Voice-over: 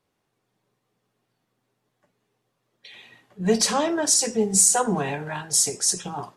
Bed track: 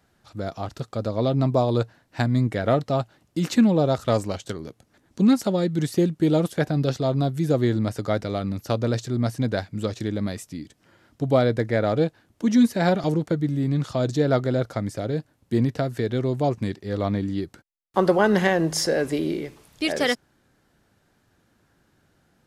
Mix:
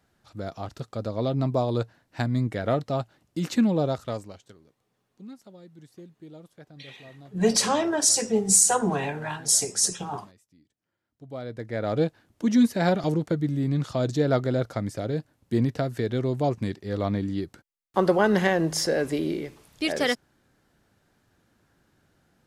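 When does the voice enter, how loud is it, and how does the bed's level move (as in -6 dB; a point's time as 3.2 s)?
3.95 s, -1.0 dB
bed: 3.86 s -4 dB
4.77 s -25.5 dB
11.05 s -25.5 dB
12 s -2 dB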